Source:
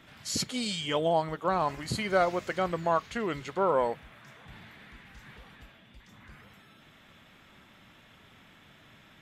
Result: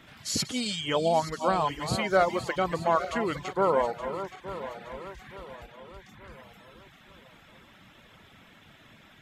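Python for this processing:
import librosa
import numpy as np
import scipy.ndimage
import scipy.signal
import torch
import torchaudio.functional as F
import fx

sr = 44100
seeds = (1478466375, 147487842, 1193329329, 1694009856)

y = fx.reverse_delay_fb(x, sr, ms=436, feedback_pct=65, wet_db=-10.0)
y = fx.dereverb_blind(y, sr, rt60_s=0.55)
y = F.gain(torch.from_numpy(y), 2.5).numpy()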